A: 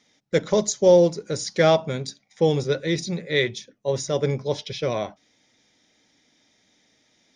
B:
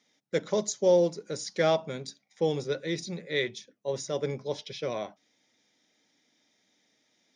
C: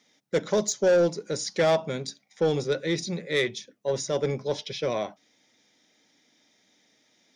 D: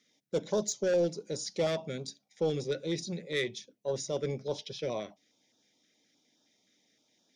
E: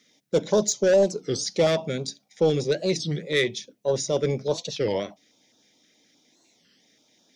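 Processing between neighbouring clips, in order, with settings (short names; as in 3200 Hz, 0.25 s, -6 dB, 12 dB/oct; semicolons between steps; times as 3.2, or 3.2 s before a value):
HPF 160 Hz 12 dB/oct; gain -7 dB
soft clip -21 dBFS, distortion -13 dB; gain +5.5 dB
stepped notch 9.6 Hz 860–2100 Hz; gain -5.5 dB
record warp 33 1/3 rpm, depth 250 cents; gain +9 dB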